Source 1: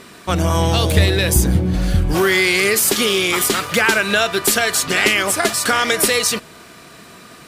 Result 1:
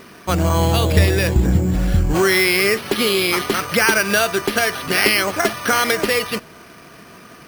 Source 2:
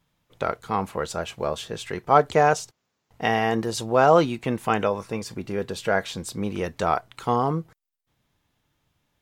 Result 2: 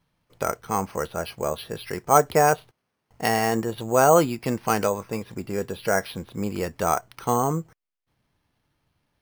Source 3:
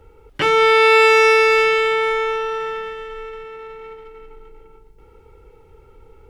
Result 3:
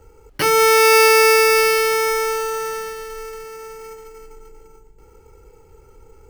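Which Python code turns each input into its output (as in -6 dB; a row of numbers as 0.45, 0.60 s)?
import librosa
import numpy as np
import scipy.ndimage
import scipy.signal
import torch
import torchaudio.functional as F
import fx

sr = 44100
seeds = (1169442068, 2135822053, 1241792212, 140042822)

y = np.repeat(scipy.signal.resample_poly(x, 1, 6), 6)[:len(x)]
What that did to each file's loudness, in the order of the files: -1.5, 0.0, 0.0 LU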